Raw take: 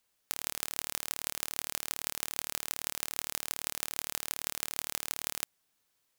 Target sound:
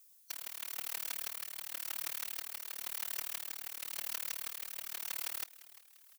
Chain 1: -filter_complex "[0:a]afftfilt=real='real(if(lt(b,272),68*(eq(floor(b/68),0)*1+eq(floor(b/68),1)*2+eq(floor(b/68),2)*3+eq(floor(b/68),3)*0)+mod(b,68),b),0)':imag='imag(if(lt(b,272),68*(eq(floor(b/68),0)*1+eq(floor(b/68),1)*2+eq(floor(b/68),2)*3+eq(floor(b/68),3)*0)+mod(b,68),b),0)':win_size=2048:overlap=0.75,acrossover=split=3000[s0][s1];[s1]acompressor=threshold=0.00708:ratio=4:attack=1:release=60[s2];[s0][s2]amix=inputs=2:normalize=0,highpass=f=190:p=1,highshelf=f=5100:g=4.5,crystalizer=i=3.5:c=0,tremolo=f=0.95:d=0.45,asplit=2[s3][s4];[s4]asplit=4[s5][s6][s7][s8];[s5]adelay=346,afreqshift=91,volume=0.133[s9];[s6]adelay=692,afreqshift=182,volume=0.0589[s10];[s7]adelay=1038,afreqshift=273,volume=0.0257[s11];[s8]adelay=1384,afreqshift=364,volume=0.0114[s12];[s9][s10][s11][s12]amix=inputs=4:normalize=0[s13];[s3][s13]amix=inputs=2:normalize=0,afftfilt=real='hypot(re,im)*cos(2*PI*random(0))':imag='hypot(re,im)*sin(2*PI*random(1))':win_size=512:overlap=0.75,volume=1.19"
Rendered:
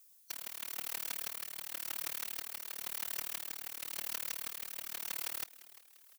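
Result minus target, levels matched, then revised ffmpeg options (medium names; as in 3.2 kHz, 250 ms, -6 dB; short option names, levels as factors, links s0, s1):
250 Hz band +5.0 dB
-filter_complex "[0:a]afftfilt=real='real(if(lt(b,272),68*(eq(floor(b/68),0)*1+eq(floor(b/68),1)*2+eq(floor(b/68),2)*3+eq(floor(b/68),3)*0)+mod(b,68),b),0)':imag='imag(if(lt(b,272),68*(eq(floor(b/68),0)*1+eq(floor(b/68),1)*2+eq(floor(b/68),2)*3+eq(floor(b/68),3)*0)+mod(b,68),b),0)':win_size=2048:overlap=0.75,acrossover=split=3000[s0][s1];[s1]acompressor=threshold=0.00708:ratio=4:attack=1:release=60[s2];[s0][s2]amix=inputs=2:normalize=0,highpass=f=530:p=1,highshelf=f=5100:g=4.5,crystalizer=i=3.5:c=0,tremolo=f=0.95:d=0.45,asplit=2[s3][s4];[s4]asplit=4[s5][s6][s7][s8];[s5]adelay=346,afreqshift=91,volume=0.133[s9];[s6]adelay=692,afreqshift=182,volume=0.0589[s10];[s7]adelay=1038,afreqshift=273,volume=0.0257[s11];[s8]adelay=1384,afreqshift=364,volume=0.0114[s12];[s9][s10][s11][s12]amix=inputs=4:normalize=0[s13];[s3][s13]amix=inputs=2:normalize=0,afftfilt=real='hypot(re,im)*cos(2*PI*random(0))':imag='hypot(re,im)*sin(2*PI*random(1))':win_size=512:overlap=0.75,volume=1.19"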